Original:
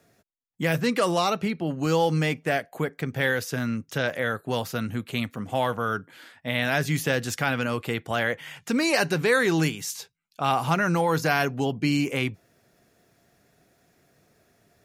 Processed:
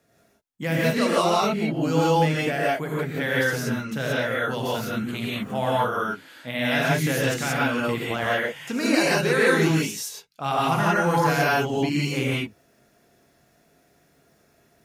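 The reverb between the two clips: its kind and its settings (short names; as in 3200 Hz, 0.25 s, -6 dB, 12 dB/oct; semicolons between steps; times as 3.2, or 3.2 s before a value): non-linear reverb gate 0.2 s rising, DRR -6 dB; gain -4.5 dB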